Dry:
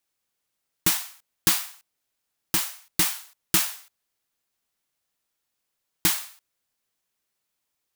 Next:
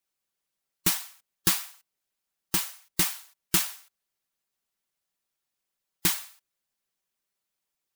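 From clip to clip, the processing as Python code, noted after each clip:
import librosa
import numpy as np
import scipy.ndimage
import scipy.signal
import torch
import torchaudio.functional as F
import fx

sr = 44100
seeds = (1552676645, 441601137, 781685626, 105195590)

y = x + 0.38 * np.pad(x, (int(5.2 * sr / 1000.0), 0))[:len(x)]
y = fx.hpss(y, sr, part='percussive', gain_db=6)
y = F.gain(torch.from_numpy(y), -8.5).numpy()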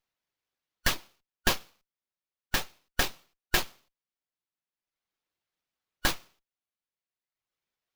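y = fx.band_shuffle(x, sr, order='3142')
y = fx.dereverb_blind(y, sr, rt60_s=1.3)
y = fx.running_max(y, sr, window=5)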